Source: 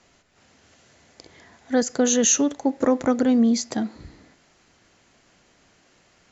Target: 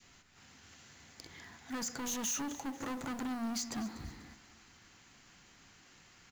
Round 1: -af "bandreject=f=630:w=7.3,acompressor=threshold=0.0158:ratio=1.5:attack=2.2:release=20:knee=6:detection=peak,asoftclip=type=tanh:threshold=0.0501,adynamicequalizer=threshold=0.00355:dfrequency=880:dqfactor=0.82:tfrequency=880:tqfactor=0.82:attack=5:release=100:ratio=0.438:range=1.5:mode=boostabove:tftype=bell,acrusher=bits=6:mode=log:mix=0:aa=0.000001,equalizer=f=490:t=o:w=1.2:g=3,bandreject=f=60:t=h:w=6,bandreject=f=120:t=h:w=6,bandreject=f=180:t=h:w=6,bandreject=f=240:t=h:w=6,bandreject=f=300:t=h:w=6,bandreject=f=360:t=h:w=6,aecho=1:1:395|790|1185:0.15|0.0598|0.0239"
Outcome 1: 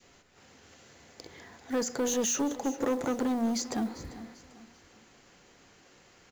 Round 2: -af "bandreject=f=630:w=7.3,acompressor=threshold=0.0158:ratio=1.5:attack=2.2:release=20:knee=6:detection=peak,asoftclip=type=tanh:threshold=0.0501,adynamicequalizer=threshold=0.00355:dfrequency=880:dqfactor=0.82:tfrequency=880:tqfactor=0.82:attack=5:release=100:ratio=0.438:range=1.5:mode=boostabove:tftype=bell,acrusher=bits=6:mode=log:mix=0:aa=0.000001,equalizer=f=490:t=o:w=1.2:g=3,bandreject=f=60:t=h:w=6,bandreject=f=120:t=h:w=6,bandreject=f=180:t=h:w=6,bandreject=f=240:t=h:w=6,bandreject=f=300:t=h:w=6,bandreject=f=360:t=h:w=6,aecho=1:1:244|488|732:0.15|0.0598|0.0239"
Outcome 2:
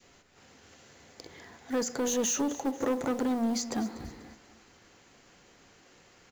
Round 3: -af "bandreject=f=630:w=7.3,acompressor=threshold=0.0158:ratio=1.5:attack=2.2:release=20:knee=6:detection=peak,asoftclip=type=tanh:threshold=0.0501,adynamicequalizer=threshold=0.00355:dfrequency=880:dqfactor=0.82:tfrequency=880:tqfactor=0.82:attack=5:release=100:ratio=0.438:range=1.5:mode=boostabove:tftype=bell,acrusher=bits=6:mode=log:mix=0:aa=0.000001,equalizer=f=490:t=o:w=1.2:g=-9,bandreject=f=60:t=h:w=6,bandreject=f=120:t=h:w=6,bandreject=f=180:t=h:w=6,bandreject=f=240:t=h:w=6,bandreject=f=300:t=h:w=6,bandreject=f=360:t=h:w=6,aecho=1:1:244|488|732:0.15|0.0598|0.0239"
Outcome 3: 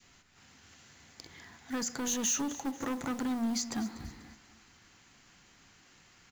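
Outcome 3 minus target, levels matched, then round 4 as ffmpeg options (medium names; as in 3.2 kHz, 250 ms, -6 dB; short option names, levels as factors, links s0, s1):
saturation: distortion -6 dB
-af "bandreject=f=630:w=7.3,acompressor=threshold=0.0158:ratio=1.5:attack=2.2:release=20:knee=6:detection=peak,asoftclip=type=tanh:threshold=0.0211,adynamicequalizer=threshold=0.00355:dfrequency=880:dqfactor=0.82:tfrequency=880:tqfactor=0.82:attack=5:release=100:ratio=0.438:range=1.5:mode=boostabove:tftype=bell,acrusher=bits=6:mode=log:mix=0:aa=0.000001,equalizer=f=490:t=o:w=1.2:g=-9,bandreject=f=60:t=h:w=6,bandreject=f=120:t=h:w=6,bandreject=f=180:t=h:w=6,bandreject=f=240:t=h:w=6,bandreject=f=300:t=h:w=6,bandreject=f=360:t=h:w=6,aecho=1:1:244|488|732:0.15|0.0598|0.0239"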